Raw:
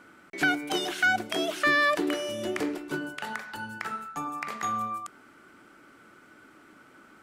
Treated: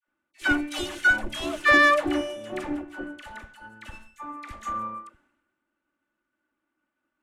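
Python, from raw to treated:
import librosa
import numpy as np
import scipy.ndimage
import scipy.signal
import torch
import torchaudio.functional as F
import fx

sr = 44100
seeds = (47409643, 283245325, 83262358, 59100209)

y = fx.lower_of_two(x, sr, delay_ms=3.4)
y = scipy.signal.sosfilt(scipy.signal.butter(2, 10000.0, 'lowpass', fs=sr, output='sos'), y)
y = fx.peak_eq(y, sr, hz=4800.0, db=-7.5, octaves=0.93)
y = fx.dispersion(y, sr, late='lows', ms=77.0, hz=790.0)
y = fx.band_widen(y, sr, depth_pct=100)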